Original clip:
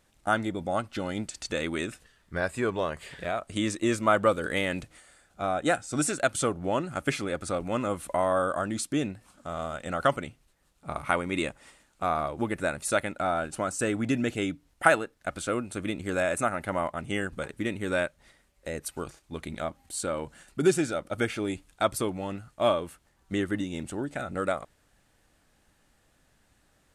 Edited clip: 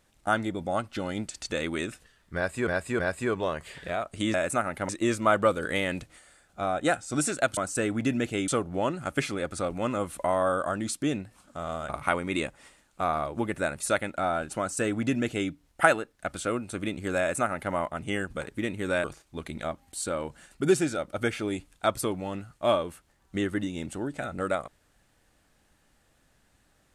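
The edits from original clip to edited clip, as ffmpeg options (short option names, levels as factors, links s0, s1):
-filter_complex "[0:a]asplit=9[s0][s1][s2][s3][s4][s5][s6][s7][s8];[s0]atrim=end=2.672[s9];[s1]atrim=start=2.348:end=2.672[s10];[s2]atrim=start=2.348:end=3.702[s11];[s3]atrim=start=16.208:end=16.762[s12];[s4]atrim=start=3.698:end=6.382[s13];[s5]atrim=start=13.608:end=14.522[s14];[s6]atrim=start=6.378:end=9.792[s15];[s7]atrim=start=10.908:end=18.062[s16];[s8]atrim=start=19.008[s17];[s9][s10]acrossfade=d=0.004:c1=hsin:c2=hsin[s18];[s18][s11]acrossfade=d=0.004:c1=hsin:c2=hsin[s19];[s19][s12]acrossfade=d=0.004:c1=hsin:c2=hsin[s20];[s20][s13]acrossfade=d=0.004:c1=hsin:c2=hsin[s21];[s21][s14]acrossfade=d=0.004:c1=hsin:c2=hsin[s22];[s22][s15]acrossfade=d=0.004:c1=hsin:c2=hsin[s23];[s23][s16]acrossfade=d=0.004:c1=hsin:c2=hsin[s24];[s24][s17]acrossfade=d=0.004:c1=hsin:c2=hsin"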